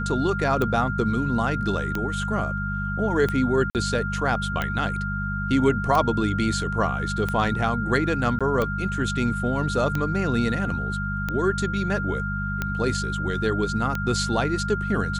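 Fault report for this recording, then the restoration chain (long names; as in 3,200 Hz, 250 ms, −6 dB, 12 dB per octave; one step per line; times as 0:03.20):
mains hum 50 Hz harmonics 4 −29 dBFS
scratch tick 45 rpm −12 dBFS
whistle 1,400 Hz −29 dBFS
0:03.70–0:03.75: drop-out 48 ms
0:08.39–0:08.41: drop-out 16 ms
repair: click removal
hum removal 50 Hz, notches 4
notch filter 1,400 Hz, Q 30
repair the gap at 0:03.70, 48 ms
repair the gap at 0:08.39, 16 ms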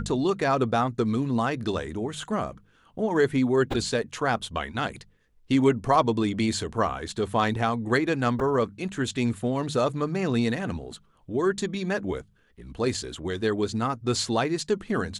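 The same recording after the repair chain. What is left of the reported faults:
none of them is left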